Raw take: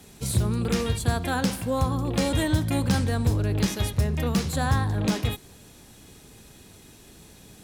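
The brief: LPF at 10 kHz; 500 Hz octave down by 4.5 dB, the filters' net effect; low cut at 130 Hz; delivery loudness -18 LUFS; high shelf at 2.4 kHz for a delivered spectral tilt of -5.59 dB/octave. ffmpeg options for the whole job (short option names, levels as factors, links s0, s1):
-af "highpass=130,lowpass=10000,equalizer=f=500:t=o:g=-5,highshelf=f=2400:g=-4.5,volume=3.55"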